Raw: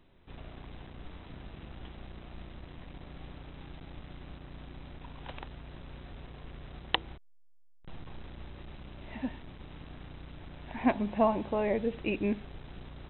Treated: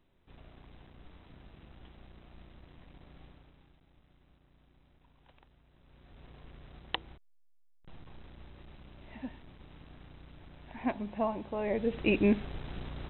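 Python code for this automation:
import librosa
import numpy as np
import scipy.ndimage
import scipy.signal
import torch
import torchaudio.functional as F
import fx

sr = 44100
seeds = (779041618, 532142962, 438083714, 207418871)

y = fx.gain(x, sr, db=fx.line((3.22, -8.0), (3.81, -19.0), (5.72, -19.0), (6.29, -6.0), (11.51, -6.0), (12.11, 5.0)))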